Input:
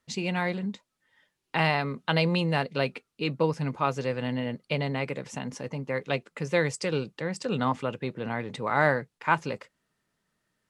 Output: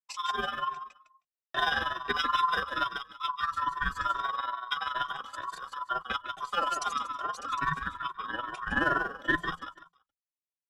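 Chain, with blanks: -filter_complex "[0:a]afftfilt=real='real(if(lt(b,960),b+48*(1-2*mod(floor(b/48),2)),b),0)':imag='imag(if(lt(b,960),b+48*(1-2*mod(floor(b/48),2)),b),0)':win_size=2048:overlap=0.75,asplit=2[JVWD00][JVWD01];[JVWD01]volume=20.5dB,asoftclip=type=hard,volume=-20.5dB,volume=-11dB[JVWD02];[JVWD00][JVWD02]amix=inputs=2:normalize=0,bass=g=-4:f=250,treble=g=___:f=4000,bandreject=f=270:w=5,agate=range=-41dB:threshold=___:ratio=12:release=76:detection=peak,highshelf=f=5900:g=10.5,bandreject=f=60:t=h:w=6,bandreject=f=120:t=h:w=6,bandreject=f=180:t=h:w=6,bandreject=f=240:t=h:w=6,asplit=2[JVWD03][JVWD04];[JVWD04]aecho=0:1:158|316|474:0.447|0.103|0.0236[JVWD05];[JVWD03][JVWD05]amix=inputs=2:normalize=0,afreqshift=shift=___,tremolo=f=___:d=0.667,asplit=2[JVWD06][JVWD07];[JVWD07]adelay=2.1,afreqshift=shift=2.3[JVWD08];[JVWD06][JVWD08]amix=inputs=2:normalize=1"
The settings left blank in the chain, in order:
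-7, -45dB, -170, 21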